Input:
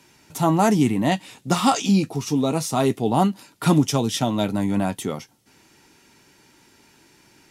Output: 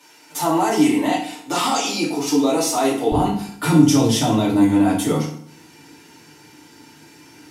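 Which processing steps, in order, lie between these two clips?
high-pass 440 Hz 12 dB/octave, from 3.12 s 95 Hz; peak limiter -17 dBFS, peak gain reduction 11 dB; FDN reverb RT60 0.6 s, low-frequency decay 1.25×, high-frequency decay 0.8×, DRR -7 dB

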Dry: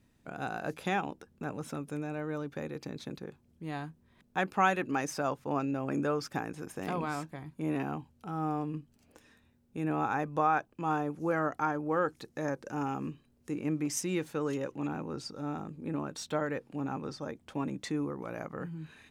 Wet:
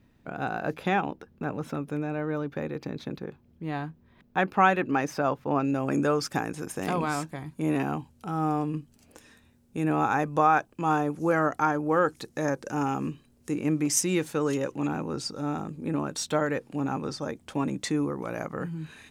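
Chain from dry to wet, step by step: peaking EQ 8.7 kHz -11.5 dB 1.5 oct, from 5.65 s +5 dB; trim +6 dB

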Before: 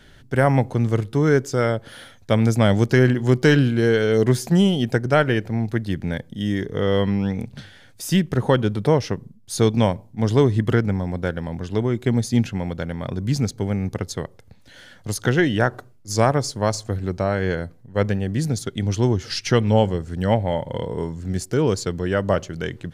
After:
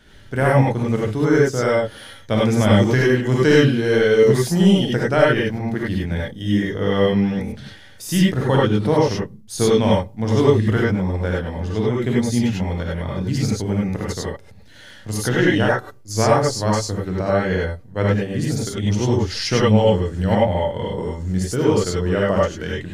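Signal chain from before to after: gated-style reverb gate 120 ms rising, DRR -5 dB; trim -3 dB

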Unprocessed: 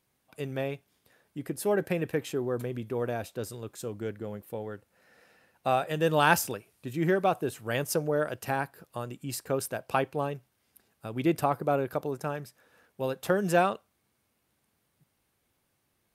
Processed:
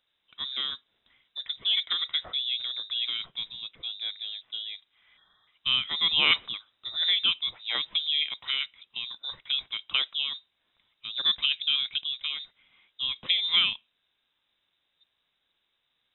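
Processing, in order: time-frequency box 5.17–5.47 s, 600–1900 Hz -26 dB; frequency inversion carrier 3.8 kHz

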